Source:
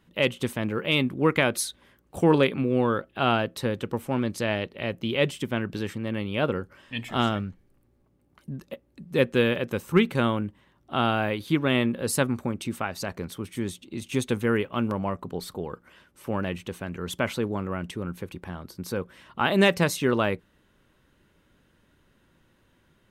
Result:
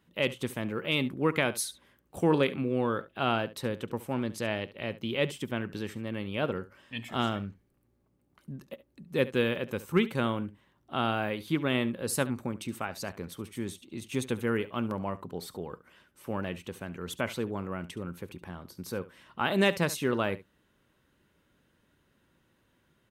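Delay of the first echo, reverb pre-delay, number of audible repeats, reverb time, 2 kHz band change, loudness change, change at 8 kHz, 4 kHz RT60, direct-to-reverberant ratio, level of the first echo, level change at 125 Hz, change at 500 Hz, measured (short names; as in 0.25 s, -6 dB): 70 ms, none, 1, none, -5.0 dB, -5.0 dB, -4.0 dB, none, none, -17.0 dB, -5.5 dB, -5.0 dB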